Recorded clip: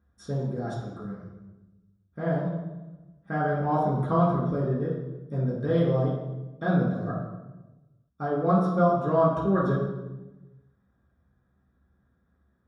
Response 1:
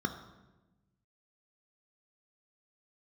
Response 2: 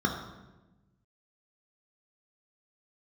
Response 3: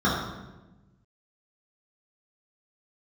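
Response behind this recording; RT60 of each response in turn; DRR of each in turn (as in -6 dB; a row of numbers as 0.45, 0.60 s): 3; 1.1, 1.1, 1.1 s; 6.0, 1.0, -8.5 dB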